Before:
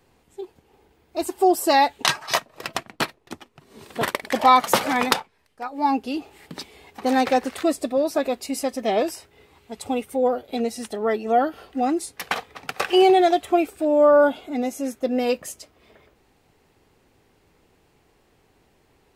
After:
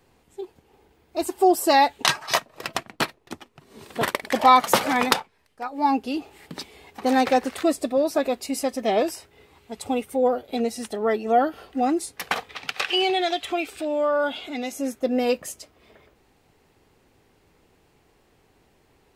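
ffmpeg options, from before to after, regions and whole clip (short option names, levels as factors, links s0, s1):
-filter_complex "[0:a]asettb=1/sr,asplit=3[s0][s1][s2];[s0]atrim=end=12.494[s3];[s1]atrim=start=12.49:end=14.72,asetpts=PTS-STARTPTS,afade=t=in:d=0.004:c=qsin,afade=t=out:st=2.226:d=0.004:c=qsin,equalizer=f=3300:t=o:w=2.3:g=14,acompressor=threshold=0.0141:ratio=1.5:attack=3.2:release=140:knee=1:detection=peak[s4];[s2]atrim=start=14.716[s5];[s3][s4]acrossfade=d=0.004:c1=hsin:c2=qsin[s6];[s6][s5]acrossfade=d=0.004:c1=qsin:c2=hsin"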